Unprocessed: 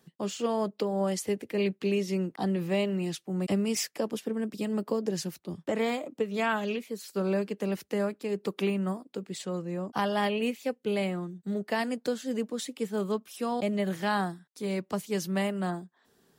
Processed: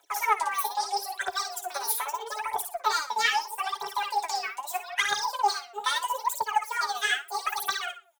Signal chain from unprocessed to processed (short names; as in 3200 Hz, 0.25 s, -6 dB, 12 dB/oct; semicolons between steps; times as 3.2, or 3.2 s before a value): reverb removal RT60 0.79 s; shoebox room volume 240 m³, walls mixed, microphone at 0.66 m; reverb removal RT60 1.5 s; on a send: feedback echo 0.116 s, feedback 22%, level -5 dB; on the sum: speed mistake 7.5 ips tape played at 15 ips; inverse Chebyshev high-pass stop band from 160 Hz, stop band 70 dB; notch 1100 Hz, Q 12; comb 7.1 ms, depth 62%; phaser 0.78 Hz, delay 4.7 ms, feedback 76%